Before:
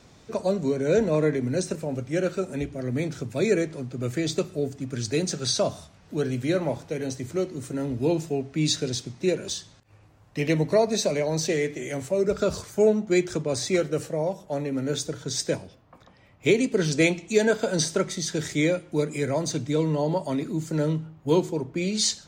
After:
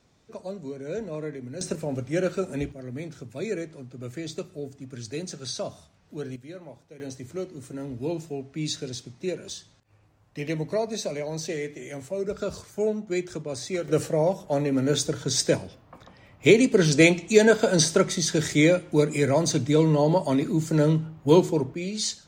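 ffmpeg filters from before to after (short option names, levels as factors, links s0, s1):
-af "asetnsamples=n=441:p=0,asendcmd='1.61 volume volume 0dB;2.72 volume volume -8dB;6.36 volume volume -17dB;7 volume volume -6dB;13.88 volume volume 4dB;21.74 volume volume -4.5dB',volume=0.282"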